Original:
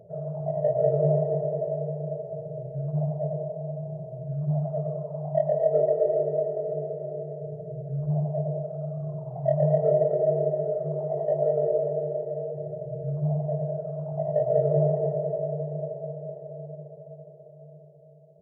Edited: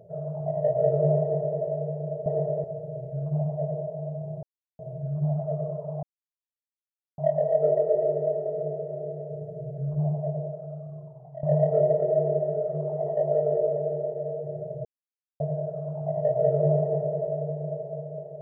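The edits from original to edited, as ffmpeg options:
-filter_complex "[0:a]asplit=8[a][b][c][d][e][f][g][h];[a]atrim=end=2.262[i];[b]atrim=start=1.208:end=1.592[j];[c]atrim=start=2.258:end=4.05,asetpts=PTS-STARTPTS,afade=t=out:st=1.788:d=0.004:c=hsin,apad=pad_dur=0.36[k];[d]atrim=start=4.05:end=5.29,asetpts=PTS-STARTPTS,afade=t=in:d=0.004:c=hsin,afade=t=out:st=1.236:d=0.004:c=hsin,apad=pad_dur=1.15[l];[e]atrim=start=5.29:end=9.54,asetpts=PTS-STARTPTS,afade=t=in:d=0.004:c=hsin,afade=t=out:st=2.88:d=1.37:silence=0.133352[m];[f]atrim=start=9.54:end=12.96,asetpts=PTS-STARTPTS,afade=t=in:d=0.004:c=hsin:silence=0.133352,afade=t=out:st=3.416:d=0.004:c=hsin[n];[g]atrim=start=12.96:end=13.51,asetpts=PTS-STARTPTS,volume=0[o];[h]atrim=start=13.51,asetpts=PTS-STARTPTS,afade=t=in:d=0.004:c=hsin[p];[i][j]acrossfade=d=0.004:c1=hsin:c2=hsin[q];[k][l][m][n][o][p]concat=n=6:v=0:a=1[r];[q][r]acrossfade=d=0.004:c1=hsin:c2=hsin"

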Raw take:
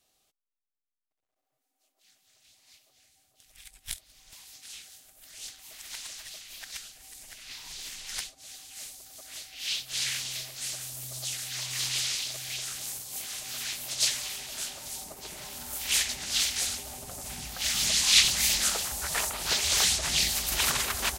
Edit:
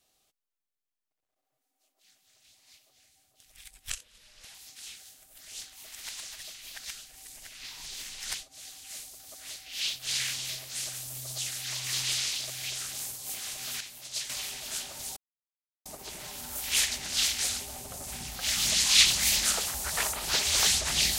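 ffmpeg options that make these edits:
-filter_complex "[0:a]asplit=6[a][b][c][d][e][f];[a]atrim=end=3.904[g];[b]atrim=start=3.9:end=4.41,asetpts=PTS-STARTPTS,asetrate=34839,aresample=44100[h];[c]atrim=start=4.406:end=13.672[i];[d]atrim=start=13.668:end=14.162,asetpts=PTS-STARTPTS,volume=-9dB[j];[e]atrim=start=14.158:end=15.03,asetpts=PTS-STARTPTS,afade=t=out:st=0.868:d=0.004:c=hsin,apad=pad_dur=0.69[k];[f]atrim=start=15.03,asetpts=PTS-STARTPTS,afade=t=in:d=0.004:c=hsin[l];[g][h]acrossfade=d=0.004:c1=hsin:c2=hsin[m];[m][i]acrossfade=d=0.004:c1=hsin:c2=hsin[n];[n][j]acrossfade=d=0.004:c1=hsin:c2=hsin[o];[k][l]concat=n=2:v=0:a=1[p];[o][p]acrossfade=d=0.004:c1=hsin:c2=hsin"

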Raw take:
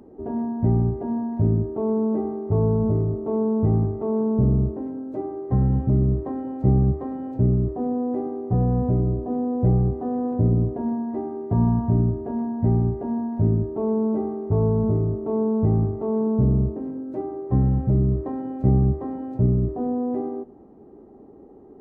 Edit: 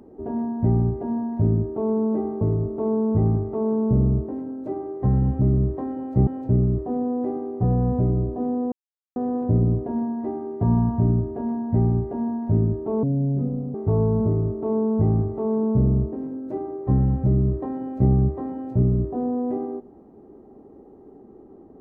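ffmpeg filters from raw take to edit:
-filter_complex "[0:a]asplit=7[a][b][c][d][e][f][g];[a]atrim=end=2.412[h];[b]atrim=start=2.888:end=6.752[i];[c]atrim=start=7.168:end=9.62,asetpts=PTS-STARTPTS,afade=t=out:st=2.448:d=0.004:c=hsin[j];[d]atrim=start=9.62:end=10.06,asetpts=PTS-STARTPTS,volume=0[k];[e]atrim=start=10.06:end=13.934,asetpts=PTS-STARTPTS,afade=t=in:d=0.004:c=hsin[l];[f]atrim=start=13.93:end=14.38,asetpts=PTS-STARTPTS,asetrate=27783,aresample=44100[m];[g]atrim=start=14.376[n];[h][i]acrossfade=d=0.004:c1=hsin:c2=hsin[o];[j][k][l]concat=n=3:v=0:a=1[p];[o][p]acrossfade=d=0.004:c1=hsin:c2=hsin[q];[q][m]acrossfade=d=0.004:c1=hsin:c2=hsin[r];[r][n]acrossfade=d=0.004:c1=hsin:c2=hsin"

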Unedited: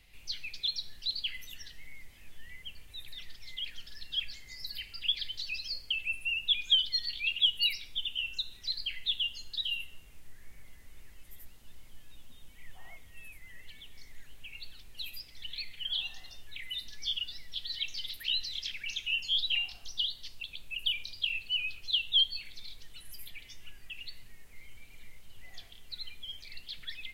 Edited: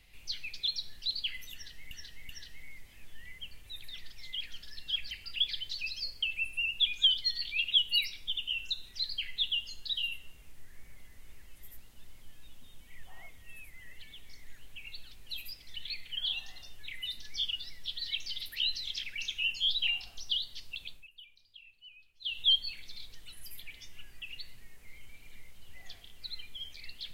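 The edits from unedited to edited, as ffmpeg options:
-filter_complex "[0:a]asplit=6[a][b][c][d][e][f];[a]atrim=end=1.912[g];[b]atrim=start=1.528:end=1.912[h];[c]atrim=start=1.528:end=4.352[i];[d]atrim=start=4.788:end=20.76,asetpts=PTS-STARTPTS,afade=t=out:st=15.772:d=0.2:silence=0.0794328[j];[e]atrim=start=20.76:end=21.88,asetpts=PTS-STARTPTS,volume=-22dB[k];[f]atrim=start=21.88,asetpts=PTS-STARTPTS,afade=t=in:d=0.2:silence=0.0794328[l];[g][h]acrossfade=d=0.004:c1=hsin:c2=hsin[m];[m][i]acrossfade=d=0.004:c1=hsin:c2=hsin[n];[j][k][l]concat=n=3:v=0:a=1[o];[n][o]acrossfade=d=0.004:c1=hsin:c2=hsin"

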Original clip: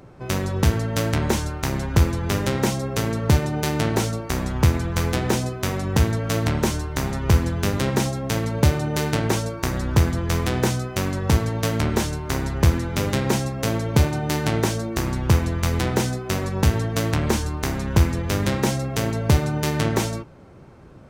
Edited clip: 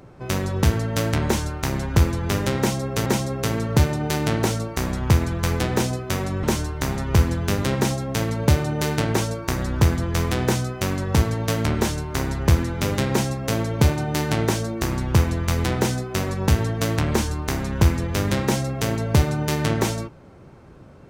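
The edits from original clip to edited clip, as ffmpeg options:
-filter_complex "[0:a]asplit=3[a][b][c];[a]atrim=end=3.062[d];[b]atrim=start=2.588:end=5.962[e];[c]atrim=start=6.578[f];[d][e]acrossfade=d=0.004:c1=hsin:c2=hsin[g];[g][f]acrossfade=d=0.004:c1=hsin:c2=hsin"

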